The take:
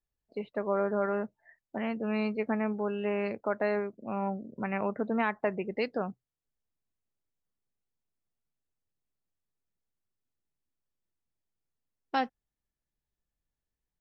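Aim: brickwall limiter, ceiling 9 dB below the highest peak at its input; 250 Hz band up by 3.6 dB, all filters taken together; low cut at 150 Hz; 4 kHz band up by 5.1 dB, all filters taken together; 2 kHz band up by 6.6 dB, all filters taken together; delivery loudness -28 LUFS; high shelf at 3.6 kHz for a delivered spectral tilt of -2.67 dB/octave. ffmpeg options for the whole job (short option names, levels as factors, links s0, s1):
-af "highpass=150,equalizer=f=250:t=o:g=5.5,equalizer=f=2000:t=o:g=8,highshelf=f=3600:g=-6.5,equalizer=f=4000:t=o:g=7.5,volume=1.58,alimiter=limit=0.168:level=0:latency=1"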